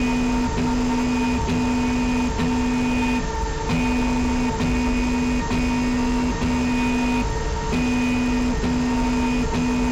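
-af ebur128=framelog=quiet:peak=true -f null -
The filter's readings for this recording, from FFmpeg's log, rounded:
Integrated loudness:
  I:         -21.9 LUFS
  Threshold: -31.9 LUFS
Loudness range:
  LRA:         0.4 LU
  Threshold: -41.9 LUFS
  LRA low:   -22.1 LUFS
  LRA high:  -21.7 LUFS
True peak:
  Peak:      -17.0 dBFS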